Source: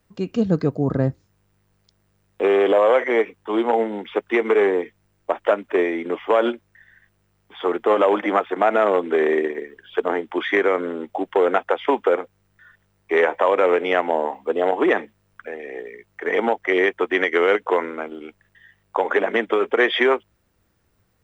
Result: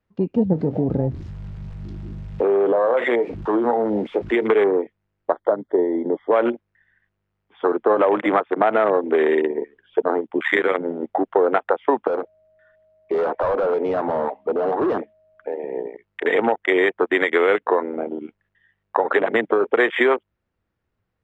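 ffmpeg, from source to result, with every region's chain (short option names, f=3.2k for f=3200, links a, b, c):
-filter_complex "[0:a]asettb=1/sr,asplit=3[a][b][c];[a]atrim=end=0.534[d];[b]atrim=start=0.53:end=4.47,asetpts=PTS-STARTPTS,afade=t=in:d=0.004:c=qsin,afade=t=out:st=3.936:d=0.004:c=qsin,aeval=exprs='val(0)+0.5*0.0299*sgn(val(0))':c=same,acompressor=threshold=-21dB:ratio=2:attack=3.2:release=140:knee=1:detection=peak,asplit=2[e][f];[f]adelay=25,volume=-11.5dB[g];[e][g]amix=inputs=2:normalize=0,atrim=end_sample=173754[h];[c]atrim=start=4.466[i];[d][h]acrossfade=d=0.004:c1=hsin:c2=qsin[j];[j][i]acrossfade=d=0.004:c1=qsin:c2=hsin,asettb=1/sr,asplit=3[k][l][m];[k]atrim=end=5.334[n];[l]atrim=start=5.33:end=6.33,asetpts=PTS-STARTPTS,afade=t=in:d=0.004:c=qsin,afade=t=out:st=0.996:d=0.004:c=qsin,asuperstop=centerf=2600:order=8:qfactor=2.4,equalizer=f=1.2k:w=0.71:g=-4.5[o];[m]atrim=start=6.326[p];[n][o]acrossfade=d=0.004:c1=hsin:c2=qsin[q];[q][p]acrossfade=d=0.004:c1=qsin:c2=hsin,asettb=1/sr,asplit=3[r][s][t];[r]atrim=end=10.274[u];[s]atrim=start=10.27:end=11.03,asetpts=PTS-STARTPTS,afade=t=in:d=0.004:c=qsin,afade=t=out:st=0.756:d=0.004:c=qsin,adynamicequalizer=threshold=0.0224:dfrequency=1700:dqfactor=1.5:tfrequency=1700:tqfactor=1.5:attack=5:release=100:ratio=0.375:range=2:mode=boostabove:tftype=bell,tremolo=f=78:d=0.667[v];[t]atrim=start=11.026[w];[u][v]acrossfade=d=0.004:c1=hsin:c2=qsin[x];[x][w]acrossfade=d=0.004:c1=qsin:c2=hsin,asettb=1/sr,asplit=3[y][z][aa];[y]atrim=end=12.074[ab];[z]atrim=start=12.07:end=15.69,asetpts=PTS-STARTPTS,afade=t=in:d=0.004:c=qsin,afade=t=out:st=3.616:d=0.004:c=qsin,aeval=exprs='val(0)+0.00501*sin(2*PI*630*n/s)':c=same,volume=22.5dB,asoftclip=hard,volume=-22.5dB[ac];[aa]atrim=start=15.686[ad];[ab][ac]acrossfade=d=0.004:c1=hsin:c2=qsin[ae];[ae][ad]acrossfade=d=0.004:c1=qsin:c2=hsin,lowpass=3.4k,afwtdn=0.0501,acompressor=threshold=-25dB:ratio=2,volume=6.5dB"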